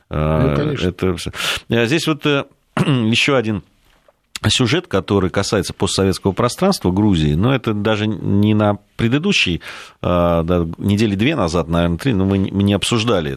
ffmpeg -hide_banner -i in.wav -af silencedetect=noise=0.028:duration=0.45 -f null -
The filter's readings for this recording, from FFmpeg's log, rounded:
silence_start: 3.60
silence_end: 4.35 | silence_duration: 0.76